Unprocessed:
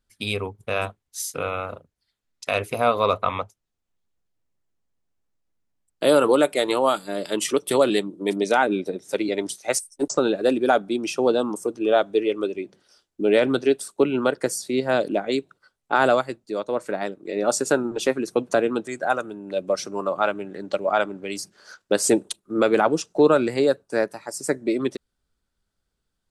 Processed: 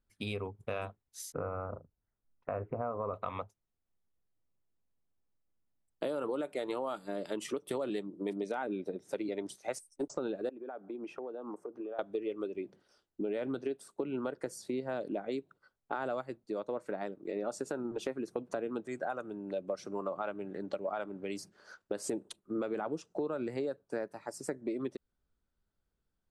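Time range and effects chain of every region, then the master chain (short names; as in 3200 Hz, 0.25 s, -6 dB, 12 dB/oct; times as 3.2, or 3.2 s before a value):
1.32–3.14 LPF 1500 Hz 24 dB/oct + low shelf 120 Hz +7.5 dB
10.49–11.99 three-band isolator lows -13 dB, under 270 Hz, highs -19 dB, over 2100 Hz + compressor 20:1, threshold -32 dBFS
whole clip: high shelf 2300 Hz -11 dB; limiter -12 dBFS; compressor 4:1, threshold -29 dBFS; gain -4.5 dB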